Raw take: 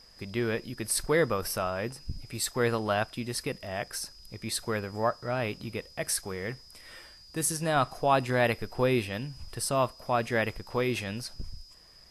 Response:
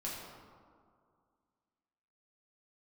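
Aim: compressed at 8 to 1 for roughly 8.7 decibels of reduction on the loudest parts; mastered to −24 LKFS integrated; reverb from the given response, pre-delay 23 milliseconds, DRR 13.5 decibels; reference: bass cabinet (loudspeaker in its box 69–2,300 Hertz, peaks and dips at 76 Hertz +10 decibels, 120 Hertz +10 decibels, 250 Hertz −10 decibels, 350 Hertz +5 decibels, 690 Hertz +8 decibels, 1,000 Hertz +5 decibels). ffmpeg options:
-filter_complex "[0:a]acompressor=threshold=-29dB:ratio=8,asplit=2[link_01][link_02];[1:a]atrim=start_sample=2205,adelay=23[link_03];[link_02][link_03]afir=irnorm=-1:irlink=0,volume=-15dB[link_04];[link_01][link_04]amix=inputs=2:normalize=0,highpass=frequency=69:width=0.5412,highpass=frequency=69:width=1.3066,equalizer=frequency=76:width_type=q:width=4:gain=10,equalizer=frequency=120:width_type=q:width=4:gain=10,equalizer=frequency=250:width_type=q:width=4:gain=-10,equalizer=frequency=350:width_type=q:width=4:gain=5,equalizer=frequency=690:width_type=q:width=4:gain=8,equalizer=frequency=1000:width_type=q:width=4:gain=5,lowpass=frequency=2300:width=0.5412,lowpass=frequency=2300:width=1.3066,volume=8.5dB"

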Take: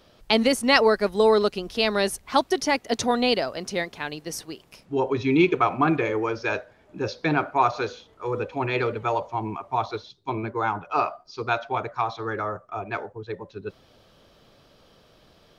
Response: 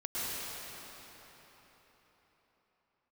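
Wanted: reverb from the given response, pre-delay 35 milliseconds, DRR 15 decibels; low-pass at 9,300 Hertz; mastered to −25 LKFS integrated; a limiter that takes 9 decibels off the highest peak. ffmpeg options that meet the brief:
-filter_complex "[0:a]lowpass=9300,alimiter=limit=-12dB:level=0:latency=1,asplit=2[link_01][link_02];[1:a]atrim=start_sample=2205,adelay=35[link_03];[link_02][link_03]afir=irnorm=-1:irlink=0,volume=-21.5dB[link_04];[link_01][link_04]amix=inputs=2:normalize=0,volume=1dB"

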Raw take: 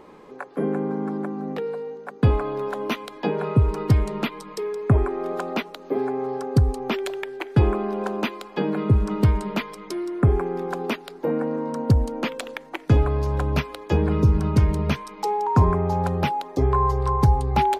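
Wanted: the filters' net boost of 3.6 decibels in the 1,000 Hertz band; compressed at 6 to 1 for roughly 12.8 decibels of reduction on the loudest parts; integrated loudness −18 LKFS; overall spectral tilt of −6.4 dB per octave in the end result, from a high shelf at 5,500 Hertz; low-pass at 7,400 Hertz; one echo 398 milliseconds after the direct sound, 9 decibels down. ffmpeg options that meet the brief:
ffmpeg -i in.wav -af "lowpass=7400,equalizer=frequency=1000:width_type=o:gain=4.5,highshelf=frequency=5500:gain=-8,acompressor=threshold=-26dB:ratio=6,aecho=1:1:398:0.355,volume=12.5dB" out.wav

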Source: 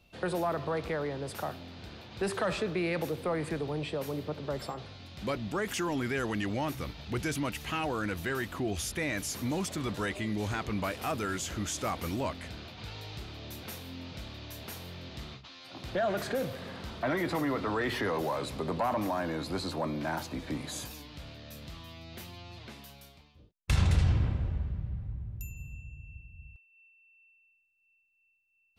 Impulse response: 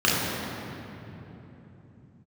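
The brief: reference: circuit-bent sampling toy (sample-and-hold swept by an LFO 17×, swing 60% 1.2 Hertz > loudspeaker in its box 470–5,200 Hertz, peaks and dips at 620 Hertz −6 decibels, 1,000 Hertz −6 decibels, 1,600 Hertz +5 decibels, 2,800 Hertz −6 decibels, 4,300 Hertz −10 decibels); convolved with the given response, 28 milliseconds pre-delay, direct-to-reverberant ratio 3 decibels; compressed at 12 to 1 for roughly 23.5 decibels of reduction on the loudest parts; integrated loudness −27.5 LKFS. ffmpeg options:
-filter_complex "[0:a]acompressor=threshold=-45dB:ratio=12,asplit=2[link_01][link_02];[1:a]atrim=start_sample=2205,adelay=28[link_03];[link_02][link_03]afir=irnorm=-1:irlink=0,volume=-22dB[link_04];[link_01][link_04]amix=inputs=2:normalize=0,acrusher=samples=17:mix=1:aa=0.000001:lfo=1:lforange=10.2:lforate=1.2,highpass=470,equalizer=frequency=620:width_type=q:width=4:gain=-6,equalizer=frequency=1000:width_type=q:width=4:gain=-6,equalizer=frequency=1600:width_type=q:width=4:gain=5,equalizer=frequency=2800:width_type=q:width=4:gain=-6,equalizer=frequency=4300:width_type=q:width=4:gain=-10,lowpass=frequency=5200:width=0.5412,lowpass=frequency=5200:width=1.3066,volume=25dB"

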